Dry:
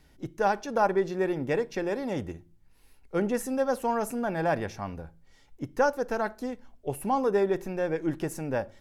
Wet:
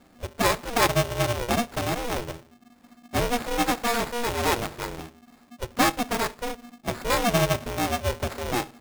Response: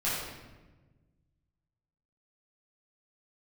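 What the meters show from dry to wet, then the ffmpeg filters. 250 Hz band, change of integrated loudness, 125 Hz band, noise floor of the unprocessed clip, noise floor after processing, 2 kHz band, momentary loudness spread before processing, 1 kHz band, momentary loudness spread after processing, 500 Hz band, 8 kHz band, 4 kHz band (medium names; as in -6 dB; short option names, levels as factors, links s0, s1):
+1.0 dB, +3.0 dB, +7.0 dB, -59 dBFS, -57 dBFS, +7.0 dB, 12 LU, +3.5 dB, 13 LU, -0.5 dB, +12.5 dB, +17.5 dB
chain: -af "acrusher=samples=15:mix=1:aa=0.000001,aeval=exprs='val(0)*sgn(sin(2*PI*240*n/s))':c=same,volume=1.33"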